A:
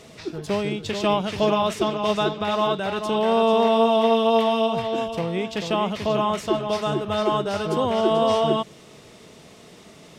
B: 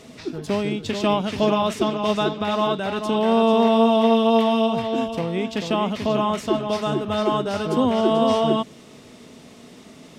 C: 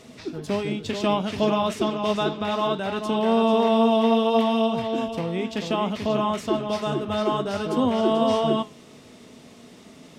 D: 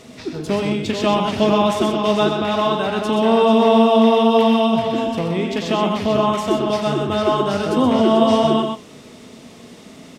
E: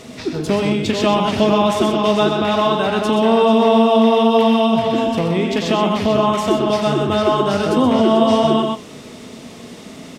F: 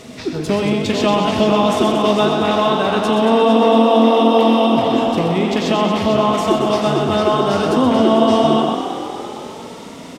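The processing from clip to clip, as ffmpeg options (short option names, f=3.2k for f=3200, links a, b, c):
-af "equalizer=f=250:w=4.7:g=11"
-af "flanger=delay=8:depth=5.2:regen=-75:speed=0.63:shape=triangular,volume=2dB"
-af "aecho=1:1:90.38|125.4:0.282|0.501,volume=5dB"
-af "acompressor=threshold=-22dB:ratio=1.5,volume=5dB"
-filter_complex "[0:a]asplit=9[a][b][c][d][e][f][g][h][i];[b]adelay=229,afreqshift=41,volume=-9.5dB[j];[c]adelay=458,afreqshift=82,volume=-13.4dB[k];[d]adelay=687,afreqshift=123,volume=-17.3dB[l];[e]adelay=916,afreqshift=164,volume=-21.1dB[m];[f]adelay=1145,afreqshift=205,volume=-25dB[n];[g]adelay=1374,afreqshift=246,volume=-28.9dB[o];[h]adelay=1603,afreqshift=287,volume=-32.8dB[p];[i]adelay=1832,afreqshift=328,volume=-36.6dB[q];[a][j][k][l][m][n][o][p][q]amix=inputs=9:normalize=0"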